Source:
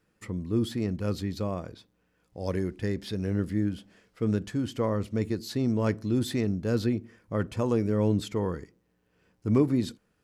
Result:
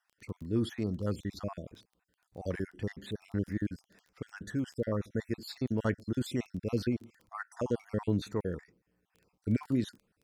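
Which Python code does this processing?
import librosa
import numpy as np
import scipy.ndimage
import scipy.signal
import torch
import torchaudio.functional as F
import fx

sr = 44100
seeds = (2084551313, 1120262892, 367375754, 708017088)

y = fx.spec_dropout(x, sr, seeds[0], share_pct=48)
y = fx.dynamic_eq(y, sr, hz=1600.0, q=2.0, threshold_db=-56.0, ratio=4.0, max_db=5)
y = fx.dmg_crackle(y, sr, seeds[1], per_s=12.0, level_db=-40.0)
y = y * 10.0 ** (-3.5 / 20.0)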